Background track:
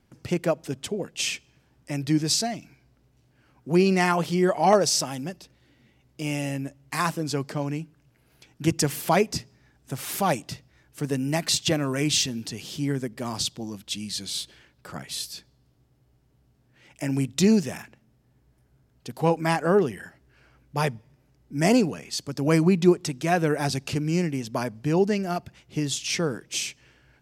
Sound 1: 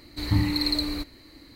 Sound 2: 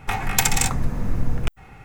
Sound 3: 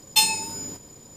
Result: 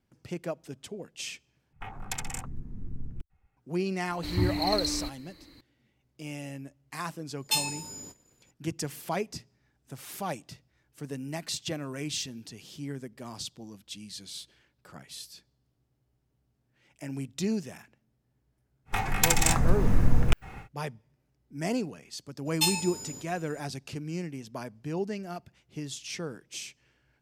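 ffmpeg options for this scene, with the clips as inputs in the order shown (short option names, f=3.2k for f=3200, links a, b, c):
-filter_complex "[2:a]asplit=2[a][b];[3:a]asplit=2[c][d];[0:a]volume=-10.5dB[e];[a]afwtdn=0.0447[f];[c]agate=range=-33dB:threshold=-40dB:ratio=3:release=100:detection=peak[g];[b]dynaudnorm=f=130:g=3:m=6.5dB[h];[e]asplit=2[i][j];[i]atrim=end=1.734[k];[f]atrim=end=1.84,asetpts=PTS-STARTPTS,volume=-15.5dB[l];[j]atrim=start=3.566[m];[1:a]atrim=end=1.55,asetpts=PTS-STARTPTS,volume=-4.5dB,afade=t=in:d=0.004:c=hsin,afade=t=out:st=1.546:d=0.004:c=hsin,adelay=4060[n];[g]atrim=end=1.16,asetpts=PTS-STARTPTS,volume=-8.5dB,afade=t=in:d=0.004:c=hsin,afade=t=out:st=1.156:d=0.004:c=hsin,adelay=7350[o];[h]atrim=end=1.84,asetpts=PTS-STARTPTS,volume=-4dB,afade=t=in:d=0.1,afade=t=out:st=1.74:d=0.1,adelay=18850[p];[d]atrim=end=1.16,asetpts=PTS-STARTPTS,volume=-7.5dB,afade=t=in:d=0.02,afade=t=out:st=1.14:d=0.02,adelay=22450[q];[k][l]acrossfade=d=0.004:c1=hsin:c2=hsin[r];[r][m]acrossfade=d=0.004:c1=hsin:c2=hsin[s];[s][n][o][p][q]amix=inputs=5:normalize=0"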